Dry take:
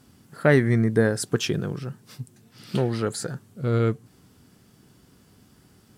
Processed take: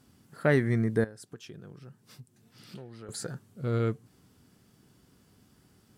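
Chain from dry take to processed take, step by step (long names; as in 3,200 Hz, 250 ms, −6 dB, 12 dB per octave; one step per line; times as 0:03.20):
0:01.04–0:03.09: downward compressor 3 to 1, threshold −42 dBFS, peak gain reduction 18.5 dB
level −6 dB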